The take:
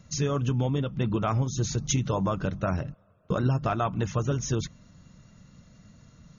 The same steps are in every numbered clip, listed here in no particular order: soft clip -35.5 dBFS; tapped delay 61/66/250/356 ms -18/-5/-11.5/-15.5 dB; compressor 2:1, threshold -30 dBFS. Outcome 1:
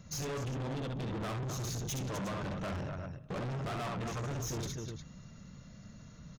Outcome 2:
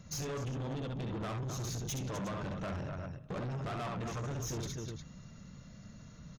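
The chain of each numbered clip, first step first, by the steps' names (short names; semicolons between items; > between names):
tapped delay > soft clip > compressor; tapped delay > compressor > soft clip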